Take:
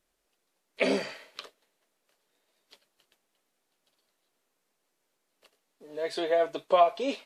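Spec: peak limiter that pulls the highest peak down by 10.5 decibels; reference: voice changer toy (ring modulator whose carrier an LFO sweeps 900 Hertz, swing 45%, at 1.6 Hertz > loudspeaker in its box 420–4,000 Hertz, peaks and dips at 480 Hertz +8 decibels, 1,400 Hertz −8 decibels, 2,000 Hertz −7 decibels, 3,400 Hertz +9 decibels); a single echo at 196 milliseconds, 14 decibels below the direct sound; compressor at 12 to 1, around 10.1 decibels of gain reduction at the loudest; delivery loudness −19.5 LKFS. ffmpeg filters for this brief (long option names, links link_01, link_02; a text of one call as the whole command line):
ffmpeg -i in.wav -af "acompressor=threshold=-26dB:ratio=12,alimiter=level_in=1.5dB:limit=-24dB:level=0:latency=1,volume=-1.5dB,aecho=1:1:196:0.2,aeval=exprs='val(0)*sin(2*PI*900*n/s+900*0.45/1.6*sin(2*PI*1.6*n/s))':channel_layout=same,highpass=420,equalizer=frequency=480:width_type=q:width=4:gain=8,equalizer=frequency=1400:width_type=q:width=4:gain=-8,equalizer=frequency=2000:width_type=q:width=4:gain=-7,equalizer=frequency=3400:width_type=q:width=4:gain=9,lowpass=frequency=4000:width=0.5412,lowpass=frequency=4000:width=1.3066,volume=21.5dB" out.wav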